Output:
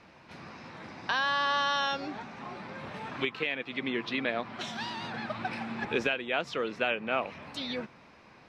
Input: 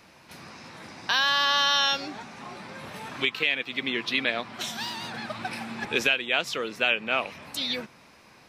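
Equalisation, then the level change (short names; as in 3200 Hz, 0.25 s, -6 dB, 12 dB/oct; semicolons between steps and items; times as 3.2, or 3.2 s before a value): high shelf 4500 Hz -9 dB; dynamic EQ 3200 Hz, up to -6 dB, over -35 dBFS, Q 0.71; air absorption 71 m; 0.0 dB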